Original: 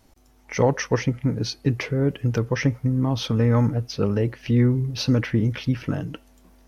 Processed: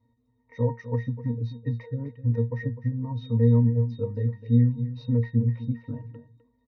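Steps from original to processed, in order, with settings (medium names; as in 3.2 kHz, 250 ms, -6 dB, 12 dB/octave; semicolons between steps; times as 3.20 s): reverb removal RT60 0.57 s; pitch-class resonator A#, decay 0.2 s; delay 254 ms -13.5 dB; trim +3 dB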